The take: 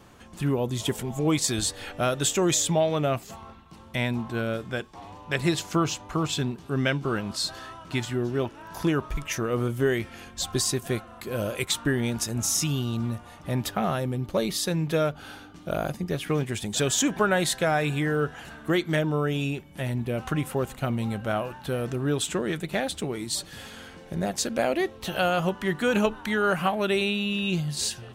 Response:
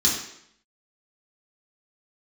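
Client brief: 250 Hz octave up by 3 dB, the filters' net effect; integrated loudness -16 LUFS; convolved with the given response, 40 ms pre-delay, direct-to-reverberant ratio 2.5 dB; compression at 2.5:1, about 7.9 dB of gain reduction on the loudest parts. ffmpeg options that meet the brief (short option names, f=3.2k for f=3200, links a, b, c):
-filter_complex "[0:a]equalizer=f=250:t=o:g=4,acompressor=threshold=-29dB:ratio=2.5,asplit=2[a][b];[1:a]atrim=start_sample=2205,adelay=40[c];[b][c]afir=irnorm=-1:irlink=0,volume=-15dB[d];[a][d]amix=inputs=2:normalize=0,volume=12dB"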